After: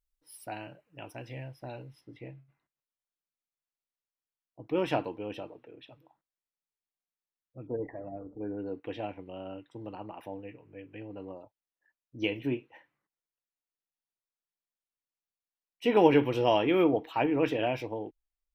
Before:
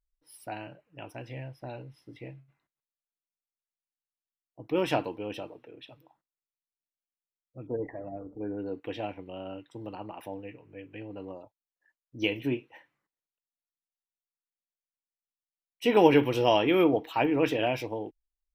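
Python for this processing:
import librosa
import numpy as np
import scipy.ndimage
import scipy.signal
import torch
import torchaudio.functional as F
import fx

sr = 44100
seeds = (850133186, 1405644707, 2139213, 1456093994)

y = fx.high_shelf(x, sr, hz=4700.0, db=fx.steps((0.0, 4.0), (2.0, -9.0)))
y = y * 10.0 ** (-1.5 / 20.0)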